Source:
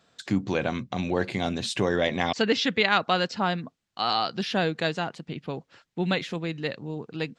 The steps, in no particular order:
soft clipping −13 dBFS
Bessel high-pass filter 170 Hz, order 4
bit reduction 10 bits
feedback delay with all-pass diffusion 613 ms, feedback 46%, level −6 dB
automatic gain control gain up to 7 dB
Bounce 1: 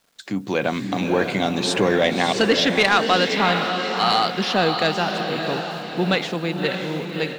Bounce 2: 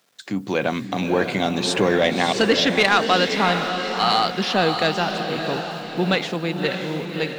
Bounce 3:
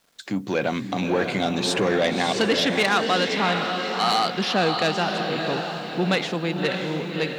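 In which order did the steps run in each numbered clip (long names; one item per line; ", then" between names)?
Bessel high-pass filter, then bit reduction, then feedback delay with all-pass diffusion, then soft clipping, then automatic gain control
bit reduction, then Bessel high-pass filter, then soft clipping, then automatic gain control, then feedback delay with all-pass diffusion
automatic gain control, then feedback delay with all-pass diffusion, then soft clipping, then Bessel high-pass filter, then bit reduction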